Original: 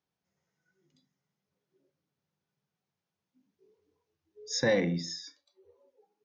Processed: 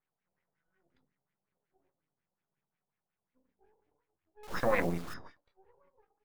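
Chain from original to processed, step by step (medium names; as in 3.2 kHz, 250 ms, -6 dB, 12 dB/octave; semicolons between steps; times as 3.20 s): treble shelf 3.8 kHz +7.5 dB; de-hum 49.96 Hz, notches 31; half-wave rectifier; LFO low-pass sine 5.5 Hz 700–2300 Hz; 4.43–5.14 s: word length cut 8-bit, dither none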